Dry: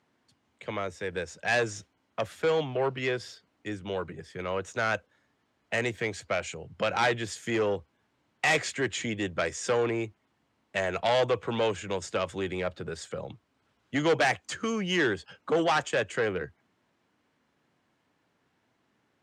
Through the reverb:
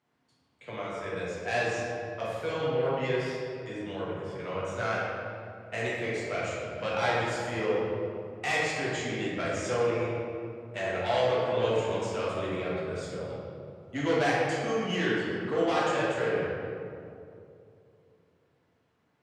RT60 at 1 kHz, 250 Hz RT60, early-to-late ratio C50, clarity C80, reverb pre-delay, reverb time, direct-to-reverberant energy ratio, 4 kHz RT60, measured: 2.3 s, 2.9 s, -2.5 dB, 0.0 dB, 7 ms, 2.6 s, -8.0 dB, 1.3 s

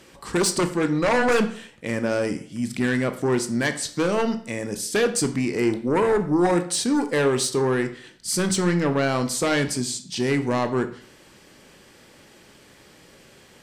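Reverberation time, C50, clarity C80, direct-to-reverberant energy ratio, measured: 0.55 s, 12.5 dB, 16.0 dB, 8.0 dB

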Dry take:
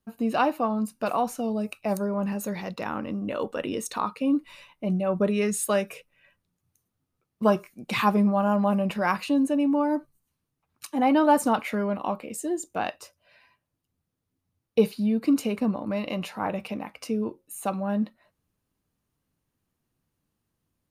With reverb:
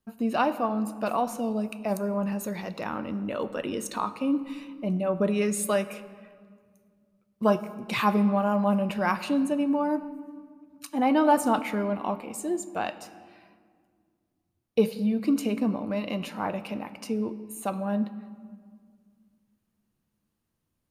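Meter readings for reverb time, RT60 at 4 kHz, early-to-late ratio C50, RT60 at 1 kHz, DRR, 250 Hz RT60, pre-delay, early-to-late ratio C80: 1.9 s, 1.2 s, 14.0 dB, 1.8 s, 12.0 dB, 2.7 s, 3 ms, 15.0 dB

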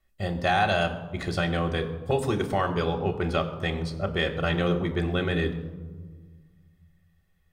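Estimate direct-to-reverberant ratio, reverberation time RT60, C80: 3.0 dB, 1.5 s, 12.5 dB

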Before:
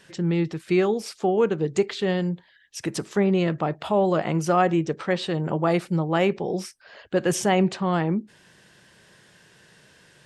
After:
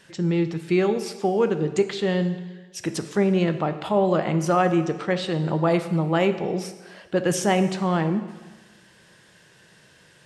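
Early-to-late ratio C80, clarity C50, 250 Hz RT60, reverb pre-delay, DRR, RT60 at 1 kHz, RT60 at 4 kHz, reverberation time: 13.0 dB, 11.5 dB, 1.3 s, 3 ms, 9.0 dB, 1.4 s, 1.3 s, 1.4 s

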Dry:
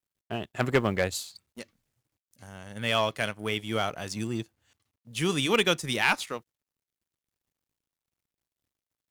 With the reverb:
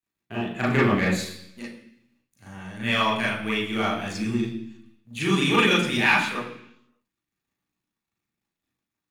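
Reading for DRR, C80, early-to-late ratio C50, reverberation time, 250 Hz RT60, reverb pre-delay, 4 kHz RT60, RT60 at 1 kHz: -7.0 dB, 7.5 dB, 3.5 dB, 0.70 s, 0.90 s, 34 ms, 0.95 s, 0.70 s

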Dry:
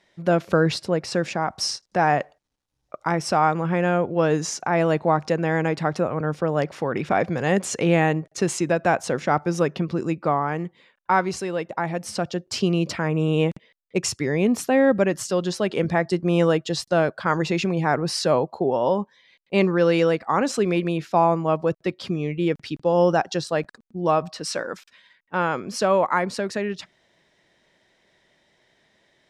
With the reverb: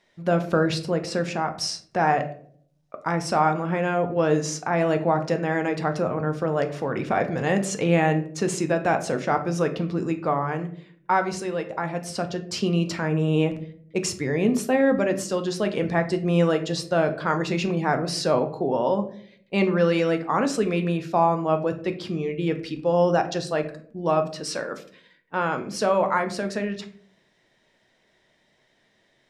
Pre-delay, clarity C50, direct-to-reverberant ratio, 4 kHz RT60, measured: 4 ms, 12.5 dB, 6.0 dB, 0.30 s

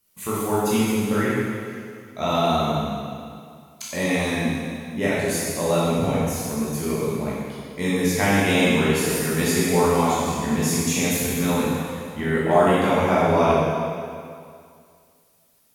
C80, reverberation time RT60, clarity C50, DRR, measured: -1.0 dB, 2.2 s, -3.5 dB, -9.0 dB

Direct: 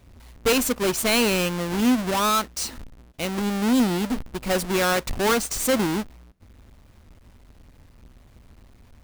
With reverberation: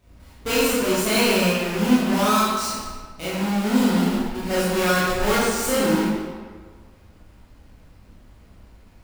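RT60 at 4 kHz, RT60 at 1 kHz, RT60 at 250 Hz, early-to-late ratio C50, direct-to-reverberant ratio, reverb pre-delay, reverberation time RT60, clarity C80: 1.1 s, 1.6 s, 1.5 s, -3.0 dB, -10.0 dB, 17 ms, 1.6 s, 0.0 dB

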